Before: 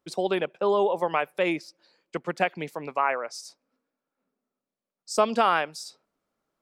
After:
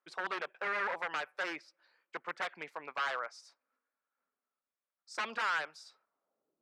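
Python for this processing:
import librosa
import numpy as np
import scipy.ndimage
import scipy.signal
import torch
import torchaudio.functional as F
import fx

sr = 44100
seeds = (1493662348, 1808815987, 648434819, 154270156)

y = 10.0 ** (-23.0 / 20.0) * (np.abs((x / 10.0 ** (-23.0 / 20.0) + 3.0) % 4.0 - 2.0) - 1.0)
y = fx.filter_sweep_bandpass(y, sr, from_hz=1500.0, to_hz=320.0, start_s=6.0, end_s=6.58, q=1.5)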